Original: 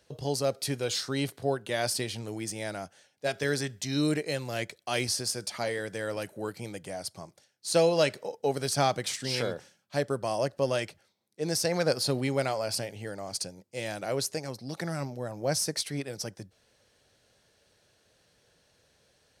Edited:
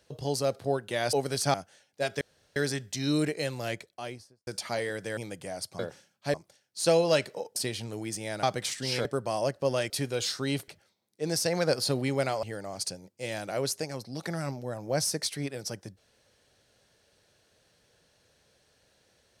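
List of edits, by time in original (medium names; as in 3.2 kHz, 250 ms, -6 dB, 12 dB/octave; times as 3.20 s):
0.59–1.37 s: move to 10.87 s
1.91–2.78 s: swap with 8.44–8.85 s
3.45 s: insert room tone 0.35 s
4.48–5.36 s: studio fade out
6.06–6.60 s: delete
9.47–10.02 s: move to 7.22 s
12.62–12.97 s: delete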